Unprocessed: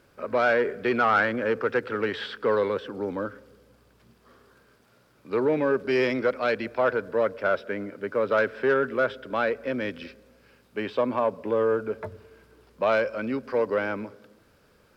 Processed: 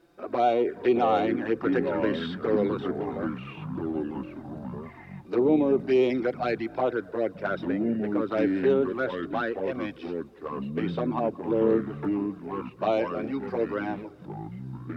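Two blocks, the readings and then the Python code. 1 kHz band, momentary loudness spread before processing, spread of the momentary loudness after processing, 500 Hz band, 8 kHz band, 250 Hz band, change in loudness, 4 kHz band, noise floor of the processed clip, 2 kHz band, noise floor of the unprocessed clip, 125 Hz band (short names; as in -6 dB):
-1.0 dB, 11 LU, 14 LU, -1.0 dB, n/a, +5.5 dB, -1.5 dB, -3.0 dB, -47 dBFS, -8.0 dB, -61 dBFS, +5.0 dB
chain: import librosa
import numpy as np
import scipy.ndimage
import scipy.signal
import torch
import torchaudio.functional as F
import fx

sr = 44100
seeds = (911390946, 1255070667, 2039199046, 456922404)

y = fx.small_body(x, sr, hz=(330.0, 730.0, 3700.0), ring_ms=40, db=13)
y = fx.env_flanger(y, sr, rest_ms=6.1, full_db=-14.5)
y = fx.echo_pitch(y, sr, ms=512, semitones=-5, count=3, db_per_echo=-6.0)
y = F.gain(torch.from_numpy(y), -3.0).numpy()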